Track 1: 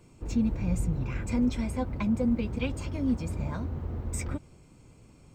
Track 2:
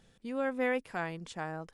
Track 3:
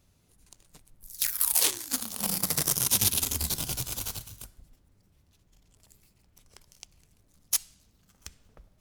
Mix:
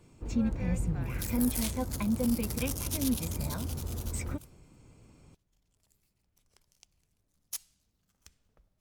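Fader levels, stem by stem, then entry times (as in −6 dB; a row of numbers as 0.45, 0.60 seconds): −2.5, −14.5, −12.0 decibels; 0.00, 0.00, 0.00 seconds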